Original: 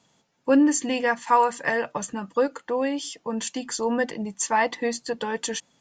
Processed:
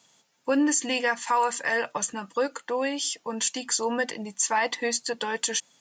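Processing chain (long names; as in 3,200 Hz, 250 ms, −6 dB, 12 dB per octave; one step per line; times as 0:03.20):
spectral tilt +2.5 dB per octave
brickwall limiter −15 dBFS, peak gain reduction 7.5 dB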